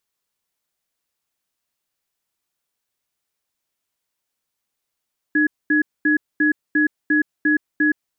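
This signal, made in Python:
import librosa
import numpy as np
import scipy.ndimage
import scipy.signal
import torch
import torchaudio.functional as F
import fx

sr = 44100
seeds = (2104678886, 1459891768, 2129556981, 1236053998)

y = fx.cadence(sr, length_s=2.57, low_hz=303.0, high_hz=1680.0, on_s=0.12, off_s=0.23, level_db=-16.5)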